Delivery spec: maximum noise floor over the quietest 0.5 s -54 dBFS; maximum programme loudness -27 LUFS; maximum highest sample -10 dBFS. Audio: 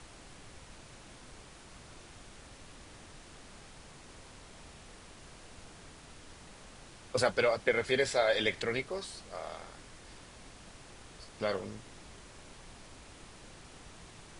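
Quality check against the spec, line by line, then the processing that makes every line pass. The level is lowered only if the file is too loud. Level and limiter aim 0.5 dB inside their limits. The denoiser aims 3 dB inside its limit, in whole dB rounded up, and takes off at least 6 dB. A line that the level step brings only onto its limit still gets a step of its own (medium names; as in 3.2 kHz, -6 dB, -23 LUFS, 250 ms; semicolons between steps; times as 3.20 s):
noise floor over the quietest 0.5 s -52 dBFS: fail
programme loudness -32.0 LUFS: pass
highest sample -13.0 dBFS: pass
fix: noise reduction 6 dB, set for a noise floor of -52 dBFS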